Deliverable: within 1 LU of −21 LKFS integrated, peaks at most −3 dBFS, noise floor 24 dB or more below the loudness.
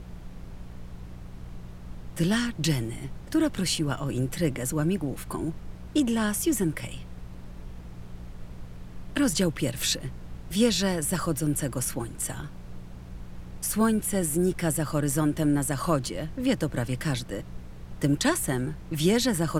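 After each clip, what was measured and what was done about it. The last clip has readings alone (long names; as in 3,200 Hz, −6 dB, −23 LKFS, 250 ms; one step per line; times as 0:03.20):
mains hum 60 Hz; hum harmonics up to 180 Hz; level of the hum −42 dBFS; background noise floor −42 dBFS; target noise floor −51 dBFS; integrated loudness −27.0 LKFS; sample peak −10.5 dBFS; target loudness −21.0 LKFS
→ hum removal 60 Hz, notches 3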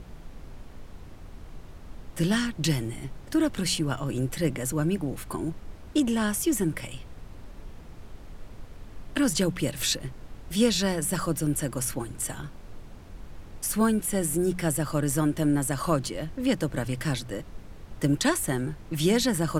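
mains hum none found; background noise floor −45 dBFS; target noise floor −52 dBFS
→ noise reduction from a noise print 7 dB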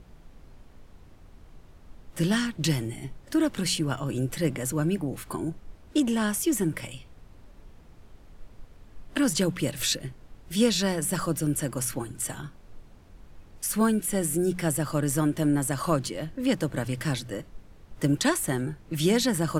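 background noise floor −52 dBFS; integrated loudness −27.5 LKFS; sample peak −10.5 dBFS; target loudness −21.0 LKFS
→ level +6.5 dB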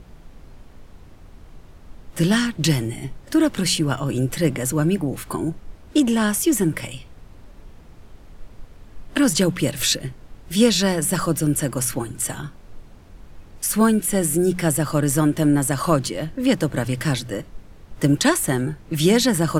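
integrated loudness −21.0 LKFS; sample peak −4.0 dBFS; background noise floor −45 dBFS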